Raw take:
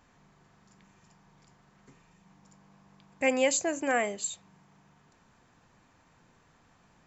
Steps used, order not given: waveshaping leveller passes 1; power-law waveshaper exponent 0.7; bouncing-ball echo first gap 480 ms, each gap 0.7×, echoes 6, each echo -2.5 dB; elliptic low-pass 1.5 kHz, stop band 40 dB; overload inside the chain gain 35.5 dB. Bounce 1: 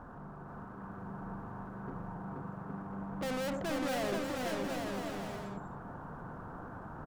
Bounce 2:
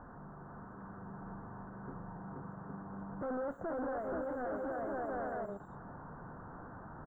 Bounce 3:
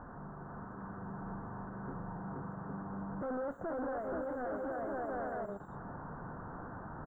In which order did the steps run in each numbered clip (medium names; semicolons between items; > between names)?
elliptic low-pass > power-law waveshaper > waveshaping leveller > overload inside the chain > bouncing-ball echo; bouncing-ball echo > waveshaping leveller > power-law waveshaper > overload inside the chain > elliptic low-pass; bouncing-ball echo > power-law waveshaper > waveshaping leveller > overload inside the chain > elliptic low-pass